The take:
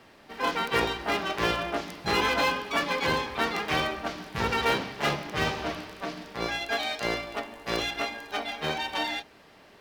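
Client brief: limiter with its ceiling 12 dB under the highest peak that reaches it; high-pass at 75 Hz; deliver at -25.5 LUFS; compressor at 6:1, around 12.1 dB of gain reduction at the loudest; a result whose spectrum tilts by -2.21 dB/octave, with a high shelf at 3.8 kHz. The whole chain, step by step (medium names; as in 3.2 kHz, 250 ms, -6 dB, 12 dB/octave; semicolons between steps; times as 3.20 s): high-pass 75 Hz; treble shelf 3.8 kHz -7 dB; compression 6:1, threshold -35 dBFS; trim +18 dB; peak limiter -16.5 dBFS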